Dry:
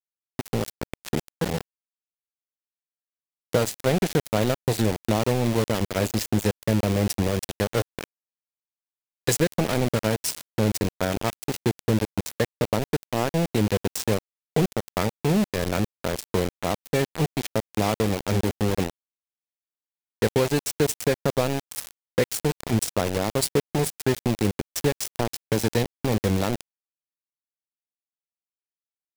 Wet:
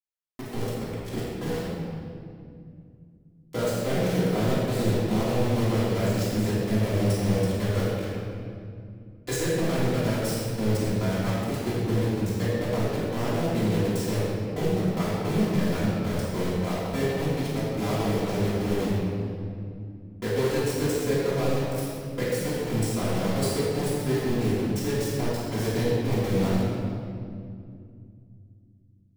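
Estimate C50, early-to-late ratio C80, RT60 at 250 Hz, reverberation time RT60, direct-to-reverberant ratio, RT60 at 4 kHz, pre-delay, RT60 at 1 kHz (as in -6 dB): -3.5 dB, -1.5 dB, 3.7 s, 2.3 s, -11.5 dB, 1.6 s, 3 ms, 2.1 s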